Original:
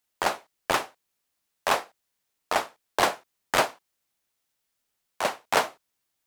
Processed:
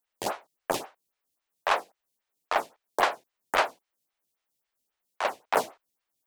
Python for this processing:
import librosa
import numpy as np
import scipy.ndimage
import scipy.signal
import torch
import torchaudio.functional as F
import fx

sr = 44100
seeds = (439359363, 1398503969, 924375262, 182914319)

y = fx.stagger_phaser(x, sr, hz=3.7)